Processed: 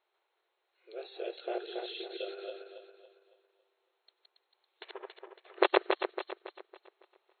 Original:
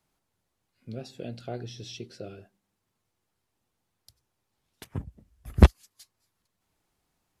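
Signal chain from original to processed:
feedback delay that plays each chunk backwards 139 ms, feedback 62%, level −0.5 dB
linear-phase brick-wall band-pass 340–4,300 Hz

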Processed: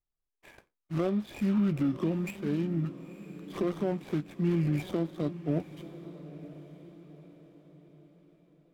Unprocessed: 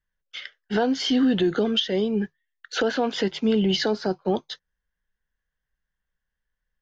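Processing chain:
running median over 25 samples
speed change −22%
feedback delay with all-pass diffusion 955 ms, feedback 44%, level −14 dB
level −6.5 dB

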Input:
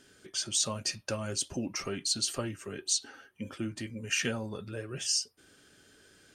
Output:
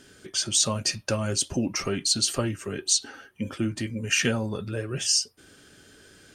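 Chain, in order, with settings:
low-shelf EQ 240 Hz +3.5 dB
level +6.5 dB

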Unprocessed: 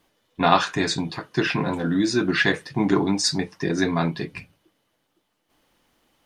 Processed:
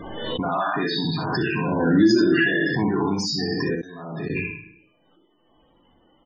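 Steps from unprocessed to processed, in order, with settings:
peak hold with a decay on every bin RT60 0.73 s
0:00.50–0:01.05: high-pass filter 160 Hz 24 dB per octave
brickwall limiter −22 dBFS, peak gain reduction 19.5 dB
0:02.01–0:02.68: hollow resonant body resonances 330/610/1,700/2,800 Hz, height 10 dB → 8 dB, ringing for 60 ms
0:03.75–0:04.30: gate with flip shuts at −35 dBFS, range −30 dB
spectral peaks only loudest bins 32
ambience of single reflections 38 ms −17.5 dB, 62 ms −5 dB
background raised ahead of every attack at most 35 dB per second
level +6 dB

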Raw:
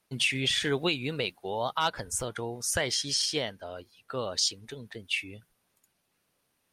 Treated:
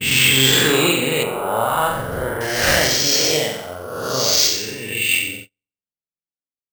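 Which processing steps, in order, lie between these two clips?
peak hold with a rise ahead of every peak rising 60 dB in 1.85 s
low-pass that shuts in the quiet parts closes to 520 Hz, open at −20.5 dBFS
flutter between parallel walls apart 7.8 metres, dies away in 0.76 s
noise gate −39 dBFS, range −39 dB
0:01.23–0:02.41: low-pass filter 1,800 Hz 12 dB per octave
bad sample-rate conversion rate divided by 4×, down none, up hold
level +5.5 dB

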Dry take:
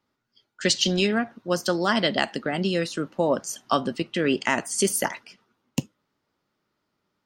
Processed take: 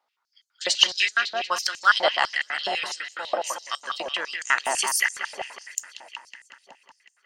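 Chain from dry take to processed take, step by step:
delay with a low-pass on its return 185 ms, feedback 72%, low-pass 4,000 Hz, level −7 dB
high-pass on a step sequencer 12 Hz 730–7,100 Hz
level −1.5 dB

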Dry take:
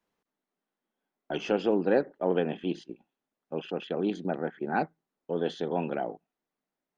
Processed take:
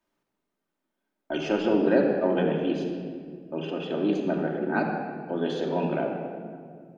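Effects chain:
rectangular room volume 3,700 cubic metres, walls mixed, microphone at 2.7 metres

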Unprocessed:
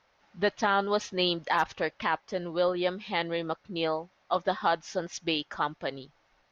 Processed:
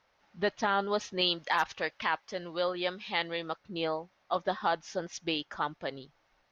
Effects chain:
0:01.21–0:03.58: tilt shelving filter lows −4.5 dB, about 870 Hz
level −3 dB

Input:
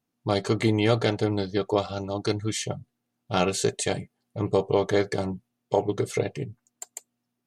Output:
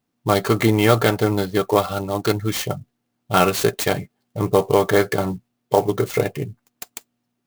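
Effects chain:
dynamic equaliser 1,300 Hz, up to +7 dB, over −43 dBFS, Q 1.5
converter with an unsteady clock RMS 0.026 ms
level +5.5 dB

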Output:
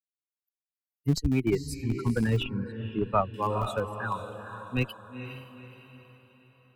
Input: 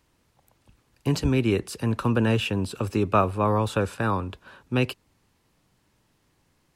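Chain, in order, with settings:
spectral dynamics exaggerated over time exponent 3
feedback delay with all-pass diffusion 478 ms, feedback 44%, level −9 dB
in parallel at −6.5 dB: comparator with hysteresis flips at −22 dBFS
0:02.43–0:03.34: on the sum: high-frequency loss of the air 440 metres
level +1 dB

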